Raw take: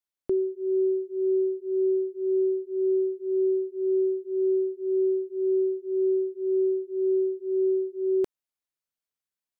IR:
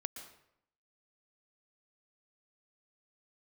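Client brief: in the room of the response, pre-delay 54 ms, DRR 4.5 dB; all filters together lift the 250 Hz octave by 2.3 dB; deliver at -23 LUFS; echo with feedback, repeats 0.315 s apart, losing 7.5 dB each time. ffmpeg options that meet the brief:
-filter_complex "[0:a]equalizer=f=250:t=o:g=5.5,aecho=1:1:315|630|945|1260|1575:0.422|0.177|0.0744|0.0312|0.0131,asplit=2[a][b];[1:a]atrim=start_sample=2205,adelay=54[c];[b][c]afir=irnorm=-1:irlink=0,volume=-3dB[d];[a][d]amix=inputs=2:normalize=0,volume=4dB"

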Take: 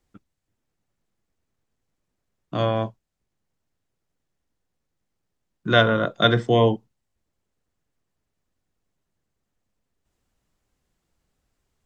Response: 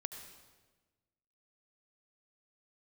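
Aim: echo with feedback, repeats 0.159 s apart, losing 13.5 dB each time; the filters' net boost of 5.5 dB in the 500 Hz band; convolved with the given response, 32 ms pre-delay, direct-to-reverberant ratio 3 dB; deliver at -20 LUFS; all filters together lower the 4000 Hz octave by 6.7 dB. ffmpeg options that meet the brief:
-filter_complex "[0:a]equalizer=f=500:t=o:g=6.5,equalizer=f=4k:t=o:g=-8,aecho=1:1:159|318:0.211|0.0444,asplit=2[a][b];[1:a]atrim=start_sample=2205,adelay=32[c];[b][c]afir=irnorm=-1:irlink=0,volume=-1dB[d];[a][d]amix=inputs=2:normalize=0,volume=-3dB"

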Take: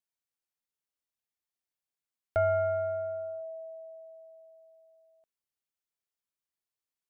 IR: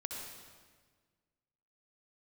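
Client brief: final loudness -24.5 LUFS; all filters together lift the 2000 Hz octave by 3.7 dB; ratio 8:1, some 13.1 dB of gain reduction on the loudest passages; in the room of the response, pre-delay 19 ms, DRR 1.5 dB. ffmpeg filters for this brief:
-filter_complex "[0:a]equalizer=f=2k:t=o:g=6.5,acompressor=threshold=-37dB:ratio=8,asplit=2[a][b];[1:a]atrim=start_sample=2205,adelay=19[c];[b][c]afir=irnorm=-1:irlink=0,volume=-1.5dB[d];[a][d]amix=inputs=2:normalize=0,volume=16dB"

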